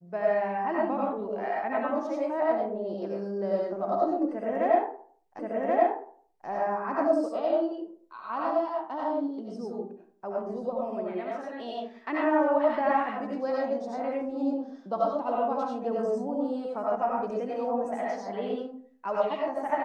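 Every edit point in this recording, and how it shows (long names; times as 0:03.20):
0:05.39: the same again, the last 1.08 s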